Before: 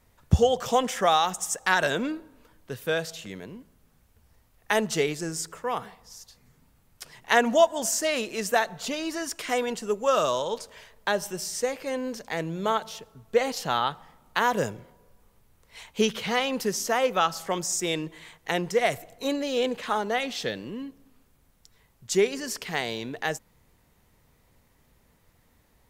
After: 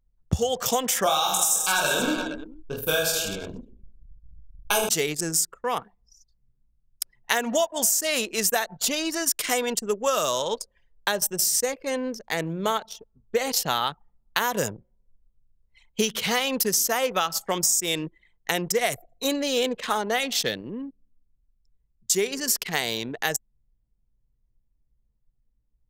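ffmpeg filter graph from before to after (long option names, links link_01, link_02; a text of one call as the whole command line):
ffmpeg -i in.wav -filter_complex "[0:a]asettb=1/sr,asplit=3[link_01][link_02][link_03];[link_01]atrim=end=1.044[link_04];[link_02]atrim=start=1.04:end=4.89,asetpts=PTS-STARTPTS,afade=type=in:duration=0.004:curve=qsin,afade=type=out:start_time=3.846:duration=0.004:curve=qsin,asuperstop=centerf=1900:order=20:qfactor=3.7,asubboost=boost=8.5:cutoff=60,aecho=1:1:20|46|79.8|123.7|180.9|255.1|351.7|477.2:0.794|0.631|0.501|0.398|0.316|0.251|0.2|0.158,atrim=end_sample=169785[link_05];[link_03]atrim=start=4.886[link_06];[link_04][link_05]acrossfade=duration=0.004:curve1=hsin:curve2=qsin[link_07];[link_07][link_06]acrossfade=duration=0.004:curve1=qsin:curve2=hsin,anlmdn=2.51,aemphasis=mode=production:type=75fm,acompressor=threshold=-22dB:ratio=10,volume=3dB" out.wav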